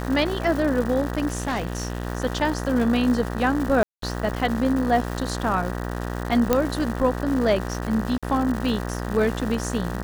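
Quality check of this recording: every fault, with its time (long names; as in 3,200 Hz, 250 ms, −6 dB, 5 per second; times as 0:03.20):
mains buzz 60 Hz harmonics 32 −29 dBFS
surface crackle 340 per second −29 dBFS
0:01.28–0:02.07: clipping −22 dBFS
0:03.83–0:04.02: drop-out 193 ms
0:06.53: click −5 dBFS
0:08.18–0:08.23: drop-out 46 ms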